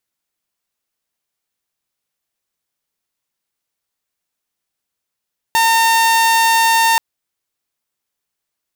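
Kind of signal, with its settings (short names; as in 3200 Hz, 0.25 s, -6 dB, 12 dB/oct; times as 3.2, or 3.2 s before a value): tone saw 910 Hz -8 dBFS 1.43 s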